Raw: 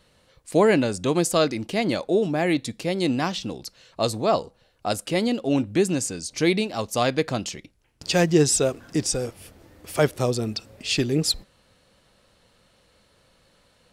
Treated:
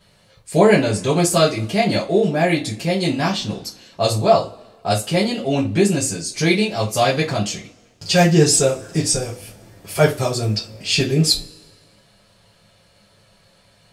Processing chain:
coupled-rooms reverb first 0.23 s, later 1.5 s, from −27 dB, DRR −6 dB
level −1.5 dB

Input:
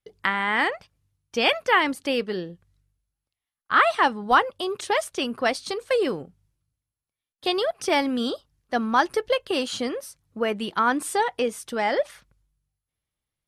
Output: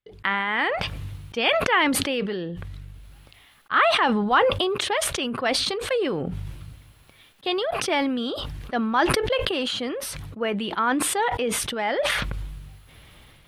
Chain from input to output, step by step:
high shelf with overshoot 4,400 Hz −8 dB, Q 1.5
level that may fall only so fast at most 23 dB per second
level −2.5 dB

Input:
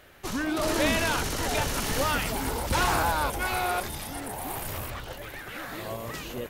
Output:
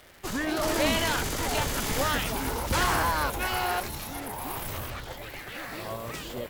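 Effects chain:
surface crackle 210 per second −40 dBFS
formants moved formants +2 semitones
MP3 112 kbit/s 48,000 Hz

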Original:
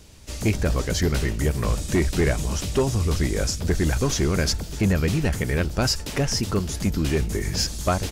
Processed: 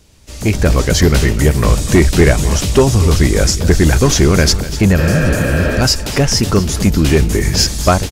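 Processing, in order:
healed spectral selection 0:05.01–0:05.79, 230–4,400 Hz before
automatic gain control gain up to 15 dB
single-tap delay 245 ms −15.5 dB
level −1 dB

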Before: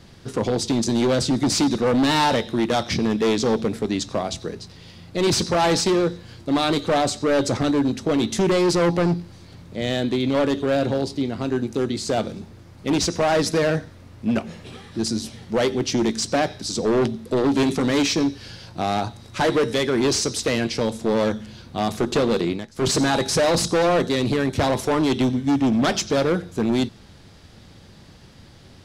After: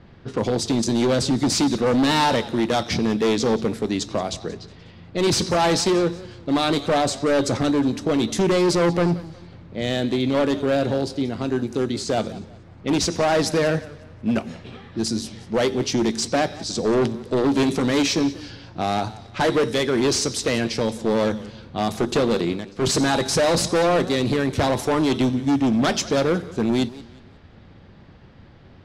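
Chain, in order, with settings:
low-pass that shuts in the quiet parts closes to 2,000 Hz, open at −21 dBFS
feedback echo with a swinging delay time 181 ms, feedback 34%, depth 130 cents, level −19 dB

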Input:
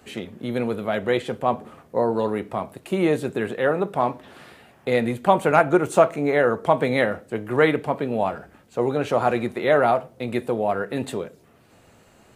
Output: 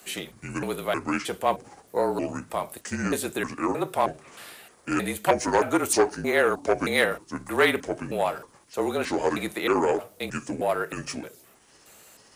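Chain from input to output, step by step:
pitch shifter gated in a rhythm −6.5 semitones, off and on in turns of 312 ms
RIAA equalisation recording
frequency shifter −35 Hz
saturating transformer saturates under 1,000 Hz

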